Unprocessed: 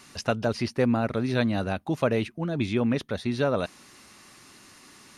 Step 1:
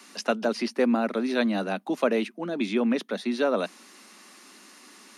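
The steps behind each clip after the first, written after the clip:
Butterworth high-pass 190 Hz 72 dB per octave
level +1 dB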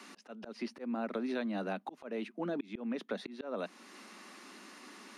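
high-shelf EQ 4,700 Hz −11 dB
volume swells 559 ms
downward compressor 16 to 1, threshold −33 dBFS, peak gain reduction 14 dB
level +1 dB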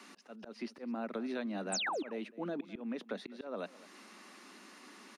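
sound drawn into the spectrogram fall, 0:01.72–0:02.03, 250–9,300 Hz −33 dBFS
single-tap delay 208 ms −19 dB
level −2.5 dB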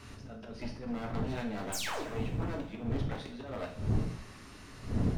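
wavefolder on the positive side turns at −38.5 dBFS
wind on the microphone 180 Hz −40 dBFS
coupled-rooms reverb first 0.49 s, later 2.7 s, from −22 dB, DRR −0.5 dB
level −1 dB

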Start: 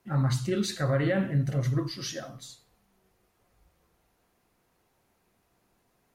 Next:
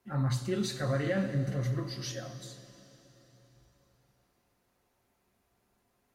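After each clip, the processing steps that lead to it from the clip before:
notch comb filter 160 Hz
dense smooth reverb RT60 4 s, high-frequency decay 0.95×, DRR 10 dB
level −3 dB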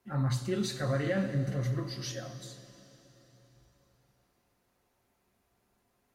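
no processing that can be heard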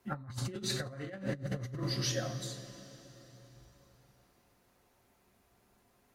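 compressor whose output falls as the input rises −36 dBFS, ratio −0.5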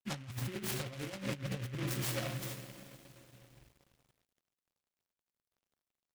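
in parallel at +2 dB: brickwall limiter −31 dBFS, peak gain reduction 9 dB
on the sum: dead-zone distortion −55.5 dBFS
short delay modulated by noise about 2,000 Hz, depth 0.18 ms
level −6.5 dB

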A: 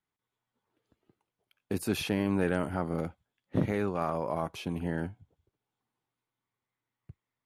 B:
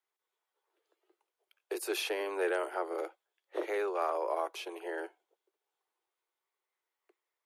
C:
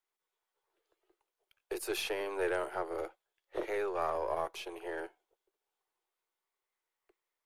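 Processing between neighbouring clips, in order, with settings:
Butterworth high-pass 340 Hz 96 dB per octave
gain on one half-wave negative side −3 dB

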